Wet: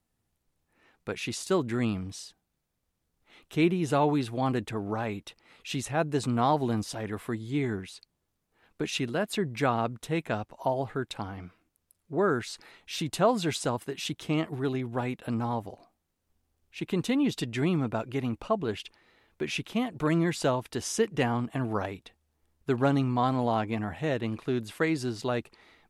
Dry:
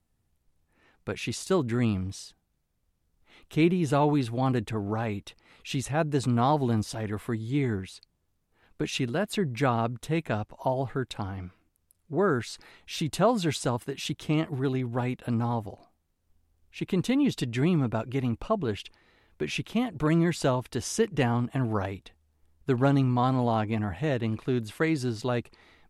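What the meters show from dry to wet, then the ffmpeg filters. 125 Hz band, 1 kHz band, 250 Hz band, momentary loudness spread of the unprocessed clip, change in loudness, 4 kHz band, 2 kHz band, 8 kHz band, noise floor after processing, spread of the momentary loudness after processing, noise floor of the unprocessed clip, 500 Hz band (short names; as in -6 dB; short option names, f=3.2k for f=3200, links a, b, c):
-4.0 dB, 0.0 dB, -2.0 dB, 12 LU, -1.5 dB, 0.0 dB, 0.0 dB, 0.0 dB, -80 dBFS, 12 LU, -74 dBFS, -0.5 dB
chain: -af "lowshelf=f=120:g=-9.5"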